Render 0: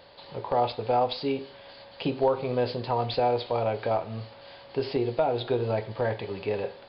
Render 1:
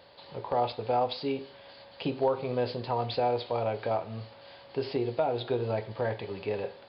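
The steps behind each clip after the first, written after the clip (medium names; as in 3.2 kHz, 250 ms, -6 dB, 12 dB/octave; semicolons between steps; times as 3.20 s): high-pass 45 Hz; trim -3 dB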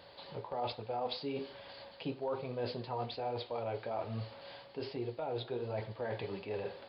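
reverse; compression, threshold -35 dBFS, peak gain reduction 13 dB; reverse; flange 1.2 Hz, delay 0.6 ms, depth 6.6 ms, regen -48%; trim +4 dB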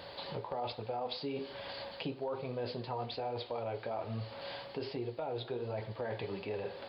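compression 2.5:1, threshold -47 dBFS, peak gain reduction 10.5 dB; trim +8 dB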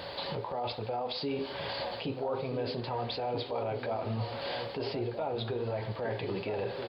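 peak limiter -33 dBFS, peak gain reduction 8 dB; echo from a far wall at 220 m, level -7 dB; trim +7 dB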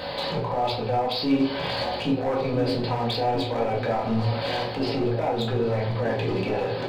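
hard clipper -29.5 dBFS, distortion -17 dB; simulated room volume 290 m³, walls furnished, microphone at 2 m; trim +5.5 dB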